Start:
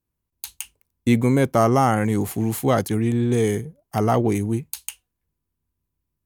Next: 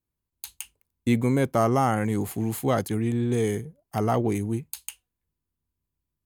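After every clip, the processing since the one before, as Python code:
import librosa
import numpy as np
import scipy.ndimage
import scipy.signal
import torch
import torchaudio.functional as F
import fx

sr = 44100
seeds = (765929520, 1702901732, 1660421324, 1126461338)

y = fx.notch(x, sr, hz=5700.0, q=13.0)
y = y * librosa.db_to_amplitude(-4.5)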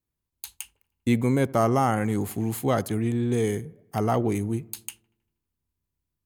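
y = fx.echo_wet_lowpass(x, sr, ms=79, feedback_pct=58, hz=1700.0, wet_db=-23.0)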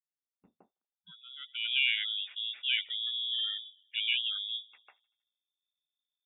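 y = fx.spec_gate(x, sr, threshold_db=-25, keep='strong')
y = fx.freq_invert(y, sr, carrier_hz=3600)
y = fx.filter_sweep_bandpass(y, sr, from_hz=230.0, to_hz=2200.0, start_s=1.11, end_s=1.74, q=3.3)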